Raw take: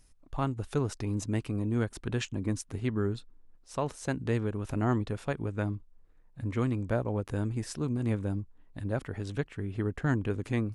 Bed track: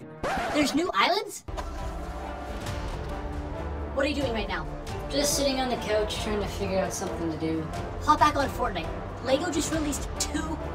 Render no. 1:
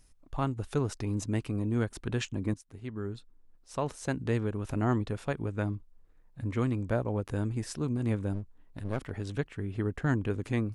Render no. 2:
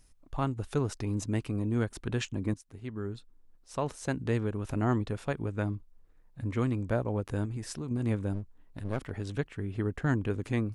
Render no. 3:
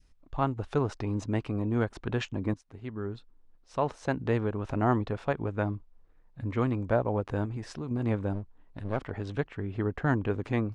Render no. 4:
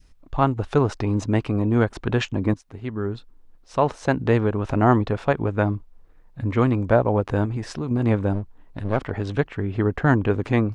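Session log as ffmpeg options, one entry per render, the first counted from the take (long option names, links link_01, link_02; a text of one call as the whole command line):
ffmpeg -i in.wav -filter_complex "[0:a]asettb=1/sr,asplit=3[link_01][link_02][link_03];[link_01]atrim=end=8.334[link_04];[link_02]atrim=start=8.33:end=9.11,asetpts=PTS-STARTPTS,afade=type=in:duration=0.004:curve=qsin,afade=type=out:start_time=0.776:duration=0.004:curve=qsin,aeval=exprs='clip(val(0),-1,0.00944)':channel_layout=same[link_05];[link_03]atrim=start=9.106[link_06];[link_04][link_05]acrossfade=duration=0.004:curve1=hsin:curve2=qsin[link_07];[link_07][link_06]acrossfade=duration=0.004:curve1=qsin:curve2=hsin,asplit=2[link_08][link_09];[link_08]atrim=end=2.54,asetpts=PTS-STARTPTS,afade=type=out:start_time=2.536:duration=0.004:curve=hsin:silence=0.158489[link_10];[link_09]atrim=start=2.54,asetpts=PTS-STARTPTS,afade=type=in:duration=1.34:silence=0.158489[link_11];[link_10][link_11]concat=n=2:v=0:a=1" out.wav
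ffmpeg -i in.wav -filter_complex "[0:a]asettb=1/sr,asplit=3[link_01][link_02][link_03];[link_01]atrim=end=7.454[link_04];[link_02]atrim=start=7.45:end=7.91,asetpts=PTS-STARTPTS,afade=type=in:duration=0.004:curve=qsin,afade=type=out:start_time=0.456:duration=0.004:curve=qsin,acompressor=threshold=-32dB:ratio=6:attack=3.2:release=140:knee=1:detection=peak[link_05];[link_03]atrim=start=7.906[link_06];[link_04][link_05]acrossfade=duration=0.004:curve1=hsin:curve2=qsin[link_07];[link_07][link_06]acrossfade=duration=0.004:curve1=qsin:curve2=hsin" out.wav
ffmpeg -i in.wav -af "lowpass=4600,adynamicequalizer=threshold=0.00562:dfrequency=810:dqfactor=0.82:tfrequency=810:tqfactor=0.82:attack=5:release=100:ratio=0.375:range=3.5:mode=boostabove:tftype=bell" out.wav
ffmpeg -i in.wav -af "volume=8.5dB" out.wav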